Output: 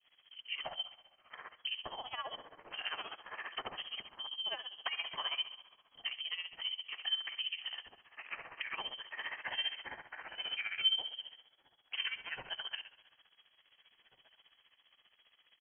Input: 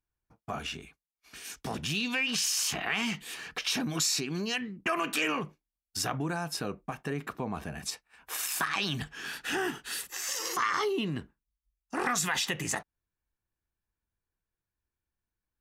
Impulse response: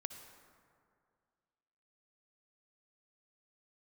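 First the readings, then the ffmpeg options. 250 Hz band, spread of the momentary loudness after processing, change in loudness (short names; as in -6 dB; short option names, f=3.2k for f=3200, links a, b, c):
-29.5 dB, 12 LU, -7.5 dB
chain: -filter_complex "[0:a]aeval=exprs='val(0)+0.5*0.0133*sgn(val(0))':c=same,afwtdn=0.0112,adynamicequalizer=threshold=0.00891:dfrequency=1900:dqfactor=0.78:tfrequency=1900:tqfactor=0.78:attack=5:release=100:ratio=0.375:range=2:mode=cutabove:tftype=bell,acompressor=threshold=-35dB:ratio=6,afreqshift=-110,highpass=f=320:t=q:w=3.7,lowpass=f=2.9k:t=q:w=0.5098,lowpass=f=2.9k:t=q:w=0.6013,lowpass=f=2.9k:t=q:w=0.9,lowpass=f=2.9k:t=q:w=2.563,afreqshift=-3400,asplit=2[a][b];[b]adelay=1749,volume=-22dB,highshelf=f=4k:g=-39.4[c];[a][c]amix=inputs=2:normalize=0,asplit=2[d][e];[1:a]atrim=start_sample=2205,adelay=91[f];[e][f]afir=irnorm=-1:irlink=0,volume=-9.5dB[g];[d][g]amix=inputs=2:normalize=0,tremolo=f=15:d=0.78"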